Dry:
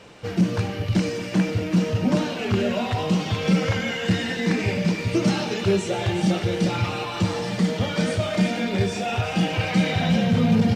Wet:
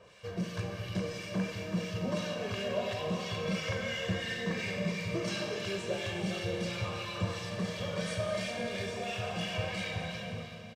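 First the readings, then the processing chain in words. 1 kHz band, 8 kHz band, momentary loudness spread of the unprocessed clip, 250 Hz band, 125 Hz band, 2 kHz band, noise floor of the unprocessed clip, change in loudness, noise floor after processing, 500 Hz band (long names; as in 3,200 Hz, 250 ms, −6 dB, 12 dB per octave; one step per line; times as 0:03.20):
−12.0 dB, −9.0 dB, 4 LU, −15.5 dB, −14.0 dB, −8.5 dB, −31 dBFS, −12.0 dB, −44 dBFS, −9.5 dB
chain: fade-out on the ending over 1.18 s
low-shelf EQ 470 Hz −4 dB
comb filter 1.8 ms, depth 64%
two-band tremolo in antiphase 2.9 Hz, depth 70%, crossover 1,400 Hz
four-comb reverb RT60 3.3 s, combs from 31 ms, DRR 3.5 dB
level −8 dB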